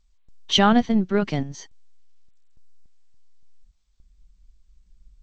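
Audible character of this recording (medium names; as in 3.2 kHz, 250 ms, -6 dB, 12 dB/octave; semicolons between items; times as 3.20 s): random-step tremolo, depth 85%; G.722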